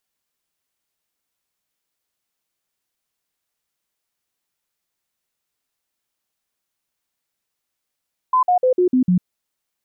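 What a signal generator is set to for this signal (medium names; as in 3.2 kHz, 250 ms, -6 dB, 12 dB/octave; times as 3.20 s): stepped sine 1.02 kHz down, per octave 2, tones 6, 0.10 s, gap 0.05 s -12 dBFS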